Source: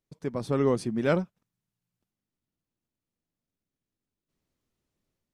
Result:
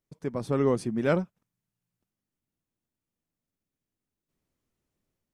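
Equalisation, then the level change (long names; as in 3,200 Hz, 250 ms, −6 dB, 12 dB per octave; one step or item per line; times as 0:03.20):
parametric band 4,100 Hz −3.5 dB 0.91 octaves
0.0 dB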